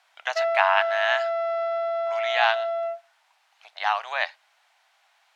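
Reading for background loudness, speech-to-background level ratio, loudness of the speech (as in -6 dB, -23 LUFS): -26.5 LUFS, 1.0 dB, -25.5 LUFS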